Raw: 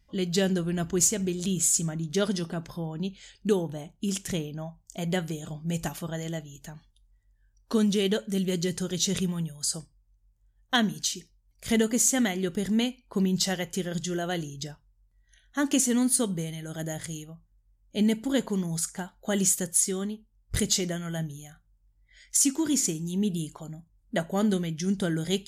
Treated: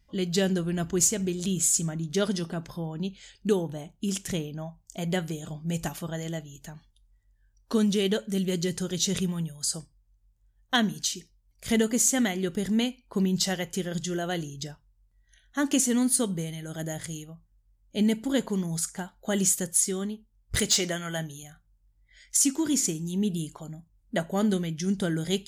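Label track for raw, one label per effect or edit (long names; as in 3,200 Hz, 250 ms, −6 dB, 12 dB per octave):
20.550000	21.430000	mid-hump overdrive drive 11 dB, tone 8,000 Hz, clips at −12 dBFS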